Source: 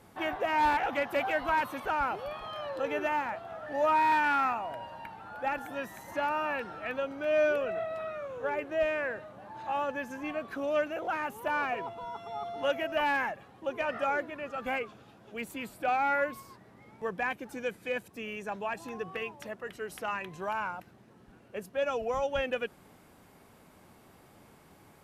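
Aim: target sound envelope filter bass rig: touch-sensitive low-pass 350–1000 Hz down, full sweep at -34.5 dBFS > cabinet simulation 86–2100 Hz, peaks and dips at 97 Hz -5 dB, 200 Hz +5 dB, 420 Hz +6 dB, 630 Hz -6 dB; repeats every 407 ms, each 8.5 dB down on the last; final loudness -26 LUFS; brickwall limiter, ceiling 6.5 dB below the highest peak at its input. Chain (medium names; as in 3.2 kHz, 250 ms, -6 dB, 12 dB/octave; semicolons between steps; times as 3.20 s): peak limiter -24.5 dBFS; feedback delay 407 ms, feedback 38%, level -8.5 dB; touch-sensitive low-pass 350–1000 Hz down, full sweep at -34.5 dBFS; cabinet simulation 86–2100 Hz, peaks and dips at 97 Hz -5 dB, 200 Hz +5 dB, 420 Hz +6 dB, 630 Hz -6 dB; trim +8.5 dB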